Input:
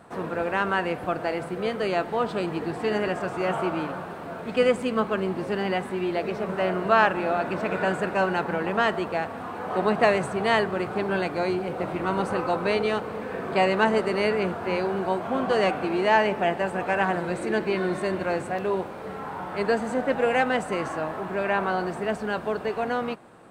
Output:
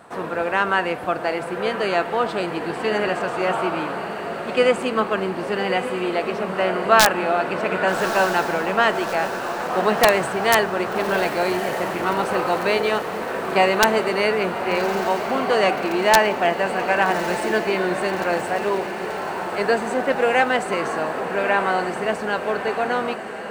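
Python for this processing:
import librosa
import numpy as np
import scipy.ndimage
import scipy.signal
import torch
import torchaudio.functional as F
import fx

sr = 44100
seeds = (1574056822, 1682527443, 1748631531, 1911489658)

y = fx.low_shelf(x, sr, hz=300.0, db=-9.0)
y = (np.mod(10.0 ** (8.5 / 20.0) * y + 1.0, 2.0) - 1.0) / 10.0 ** (8.5 / 20.0)
y = fx.echo_diffused(y, sr, ms=1199, feedback_pct=62, wet_db=-10.0)
y = F.gain(torch.from_numpy(y), 6.0).numpy()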